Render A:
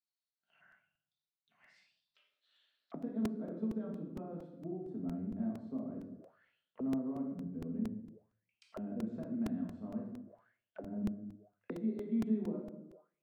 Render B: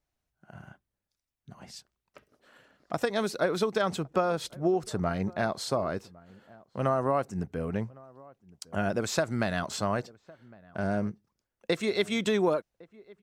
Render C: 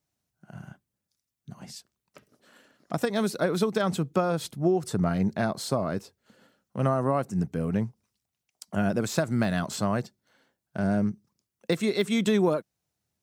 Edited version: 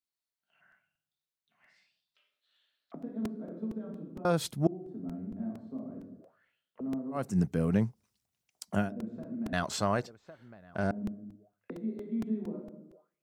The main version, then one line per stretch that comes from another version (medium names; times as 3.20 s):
A
4.25–4.67 s: from C
7.19–8.84 s: from C, crossfade 0.16 s
9.53–10.91 s: from B